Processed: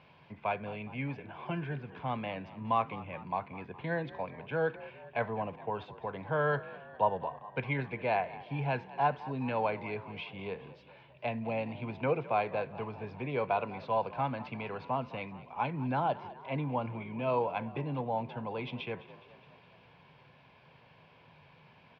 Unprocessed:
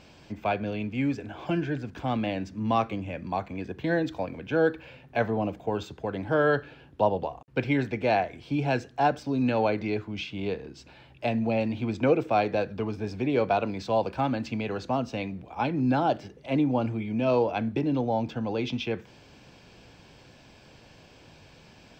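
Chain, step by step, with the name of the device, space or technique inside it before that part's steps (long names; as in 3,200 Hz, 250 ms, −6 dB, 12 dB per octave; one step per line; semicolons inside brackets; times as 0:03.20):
frequency-shifting delay pedal into a guitar cabinet (echo with shifted repeats 207 ms, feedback 59%, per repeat +48 Hz, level −17.5 dB; loudspeaker in its box 100–3,500 Hz, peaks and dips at 150 Hz +6 dB, 210 Hz −4 dB, 310 Hz −10 dB, 1,000 Hz +9 dB, 2,200 Hz +4 dB)
level −7 dB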